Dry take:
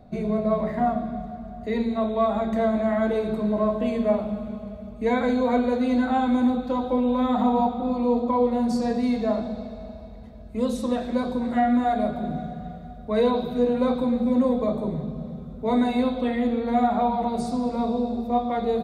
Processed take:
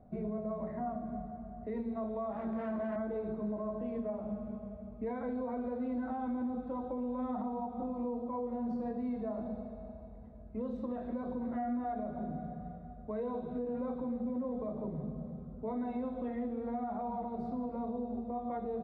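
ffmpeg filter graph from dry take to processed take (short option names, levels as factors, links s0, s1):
-filter_complex "[0:a]asettb=1/sr,asplit=3[s0][s1][s2];[s0]atrim=end=2.324[s3];[s1]atrim=start=2.32:end=2.96,asetpts=PTS-STARTPTS,afade=t=in:d=0.004:c=qsin,afade=t=out:st=0.636:d=0.004:c=qsin,volume=16.8,asoftclip=hard,volume=0.0596,highpass=61,asplit=2[s4][s5];[s5]adelay=17,volume=0.531[s6];[s4][s6]amix=inputs=2:normalize=0,atrim=end_sample=28224[s7];[s2]atrim=start=2.956[s8];[s3][s7]acrossfade=d=0.004:c1=hsin:c2=qsin[s9];[s9][s8]acrossfade=d=0.004:c1=qsin:c2=hsin,lowpass=1300,alimiter=limit=0.0891:level=0:latency=1:release=154,volume=0.376"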